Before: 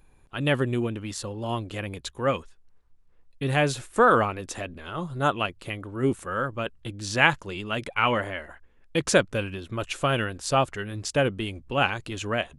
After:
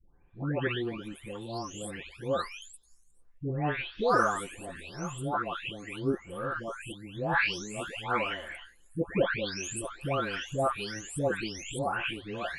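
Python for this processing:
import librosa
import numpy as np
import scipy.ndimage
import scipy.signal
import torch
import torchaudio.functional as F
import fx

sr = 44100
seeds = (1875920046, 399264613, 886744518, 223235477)

y = fx.spec_delay(x, sr, highs='late', ms=687)
y = y * librosa.db_to_amplitude(-4.0)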